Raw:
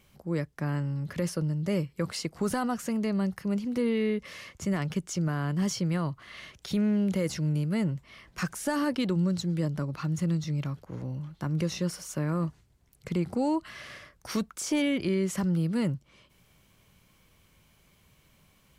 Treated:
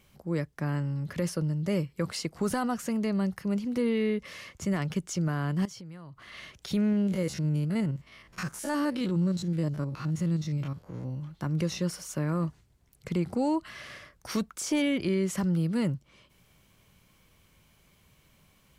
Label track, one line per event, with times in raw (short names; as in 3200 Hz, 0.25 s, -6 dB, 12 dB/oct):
5.650000	6.320000	compressor 5:1, threshold -43 dBFS
6.920000	11.230000	stepped spectrum every 50 ms